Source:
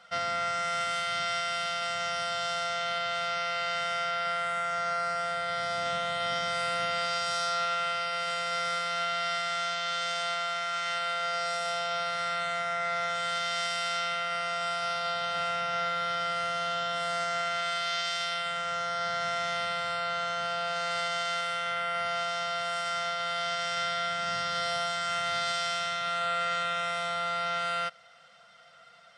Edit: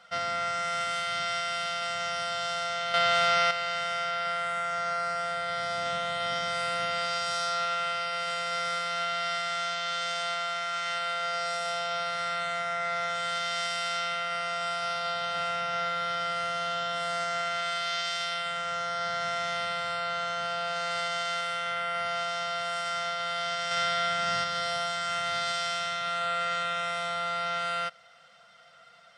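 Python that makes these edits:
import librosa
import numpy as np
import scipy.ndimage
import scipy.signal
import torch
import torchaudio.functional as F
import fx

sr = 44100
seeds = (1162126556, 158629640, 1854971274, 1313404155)

y = fx.edit(x, sr, fx.clip_gain(start_s=2.94, length_s=0.57, db=7.5),
    fx.clip_gain(start_s=23.71, length_s=0.73, db=3.0), tone=tone)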